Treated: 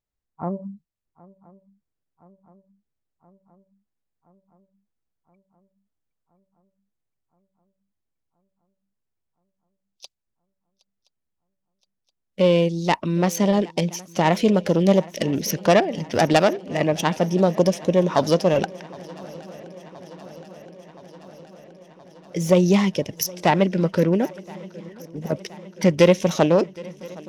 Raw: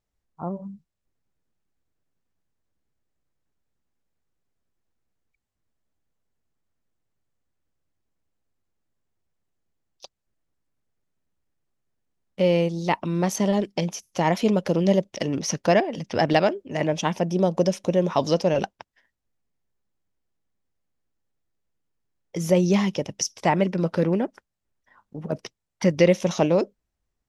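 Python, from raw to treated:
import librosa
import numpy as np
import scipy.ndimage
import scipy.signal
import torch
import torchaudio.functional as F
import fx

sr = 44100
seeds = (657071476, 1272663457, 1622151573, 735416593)

y = fx.self_delay(x, sr, depth_ms=0.13)
y = fx.noise_reduce_blind(y, sr, reduce_db=10)
y = fx.echo_swing(y, sr, ms=1022, ratio=3, feedback_pct=69, wet_db=-22.5)
y = F.gain(torch.from_numpy(y), 3.0).numpy()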